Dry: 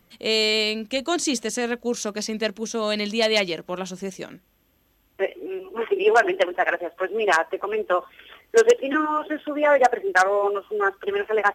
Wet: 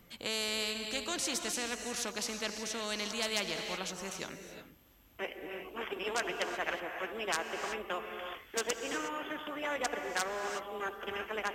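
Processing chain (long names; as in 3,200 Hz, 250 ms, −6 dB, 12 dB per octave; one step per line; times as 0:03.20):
reverb whose tail is shaped and stops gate 390 ms rising, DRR 10.5 dB
every bin compressed towards the loudest bin 2 to 1
level −9 dB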